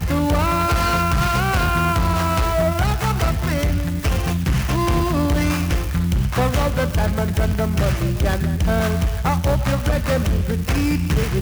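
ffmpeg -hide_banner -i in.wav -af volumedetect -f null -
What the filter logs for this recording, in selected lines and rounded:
mean_volume: -18.6 dB
max_volume: -7.2 dB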